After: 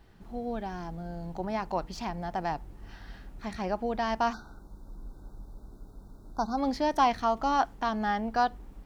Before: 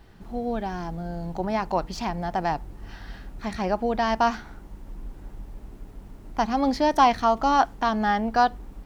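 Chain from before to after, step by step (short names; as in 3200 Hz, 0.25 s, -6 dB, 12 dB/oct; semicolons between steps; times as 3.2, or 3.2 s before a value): 4.33–6.58 brick-wall FIR band-stop 1600–3500 Hz; gain -6 dB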